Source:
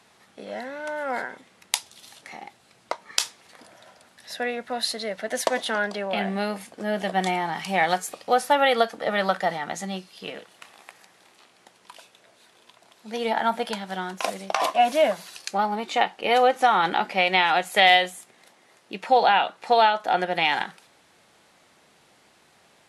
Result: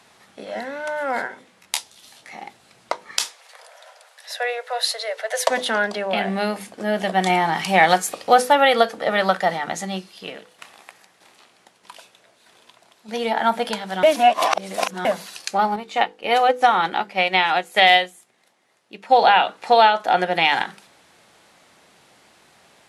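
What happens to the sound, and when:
1.27–2.36 s: detune thickener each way 25 cents -> 36 cents
3.24–5.49 s: steep high-pass 460 Hz 72 dB/octave
7.30–8.42 s: gain +3 dB
9.96–13.41 s: tremolo saw down 1.6 Hz, depth 50%
14.03–15.05 s: reverse
15.76–19.19 s: upward expansion, over -37 dBFS
whole clip: hum notches 50/100/150/200/250/300/350/400/450/500 Hz; loudness maximiser +5.5 dB; trim -1 dB

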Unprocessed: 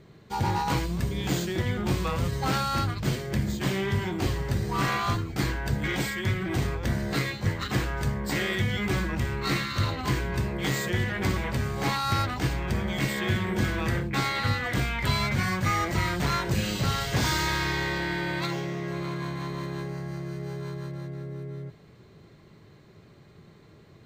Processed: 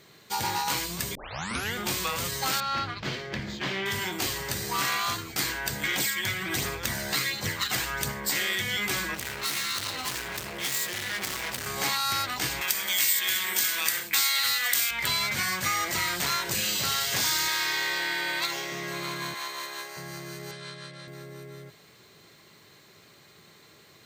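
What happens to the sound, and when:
1.15 s: tape start 0.60 s
2.60–3.86 s: distance through air 230 m
5.96–8.12 s: phaser 1.4 Hz, delay 1.5 ms, feedback 33%
9.14–11.67 s: hard clipper -32 dBFS
12.61–14.91 s: tilt EQ +4 dB/octave
17.48–18.72 s: tone controls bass -10 dB, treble -1 dB
19.34–19.97 s: high-pass 550 Hz
20.51–21.08 s: cabinet simulation 140–8400 Hz, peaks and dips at 370 Hz -9 dB, 900 Hz -10 dB, 3.4 kHz +4 dB, 6.6 kHz -9 dB
whole clip: tilt EQ +4 dB/octave; compression 2.5:1, threshold -28 dBFS; trim +2 dB

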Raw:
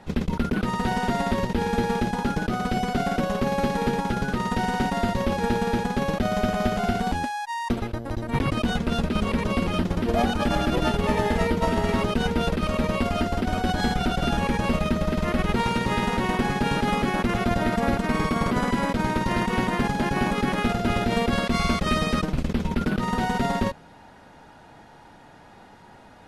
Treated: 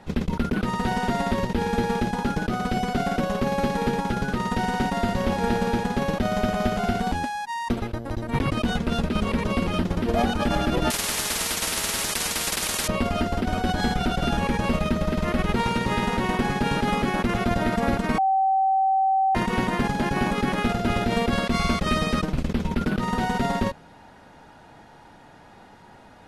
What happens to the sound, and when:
4.66–5.23 s: echo throw 440 ms, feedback 55%, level -10 dB
10.90–12.88 s: spectrum-flattening compressor 10:1
18.18–19.35 s: bleep 770 Hz -17.5 dBFS

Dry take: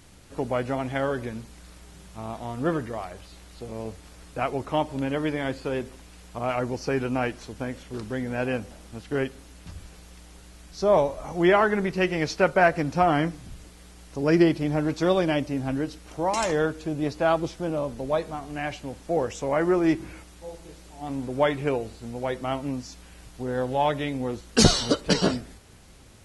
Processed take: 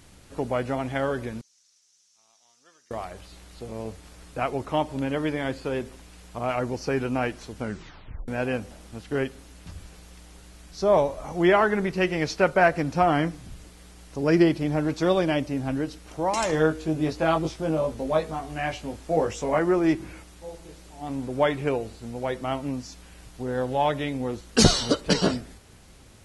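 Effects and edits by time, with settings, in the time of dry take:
1.41–2.91 s: band-pass filter 5.9 kHz, Q 4.9
7.59 s: tape stop 0.69 s
16.51–19.59 s: doubling 19 ms -3 dB

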